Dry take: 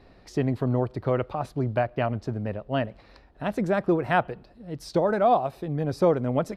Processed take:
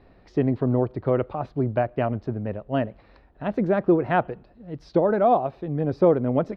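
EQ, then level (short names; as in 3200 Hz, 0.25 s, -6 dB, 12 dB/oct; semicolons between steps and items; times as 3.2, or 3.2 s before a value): dynamic EQ 340 Hz, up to +5 dB, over -32 dBFS, Q 0.77; air absorption 240 m; 0.0 dB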